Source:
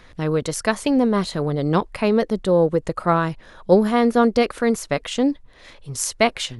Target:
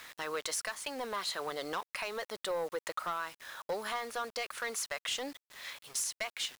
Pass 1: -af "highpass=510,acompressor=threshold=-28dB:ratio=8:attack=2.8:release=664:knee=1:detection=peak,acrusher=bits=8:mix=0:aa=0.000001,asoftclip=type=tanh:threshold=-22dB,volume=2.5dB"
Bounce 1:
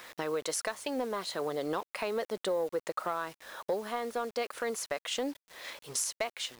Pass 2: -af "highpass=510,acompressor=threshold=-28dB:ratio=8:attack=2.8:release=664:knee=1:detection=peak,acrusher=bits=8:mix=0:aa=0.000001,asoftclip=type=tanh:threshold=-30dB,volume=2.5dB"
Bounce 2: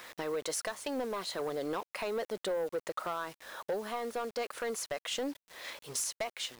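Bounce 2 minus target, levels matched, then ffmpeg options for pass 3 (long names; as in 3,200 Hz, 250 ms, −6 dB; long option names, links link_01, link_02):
500 Hz band +3.5 dB
-af "highpass=1100,acompressor=threshold=-28dB:ratio=8:attack=2.8:release=664:knee=1:detection=peak,acrusher=bits=8:mix=0:aa=0.000001,asoftclip=type=tanh:threshold=-30dB,volume=2.5dB"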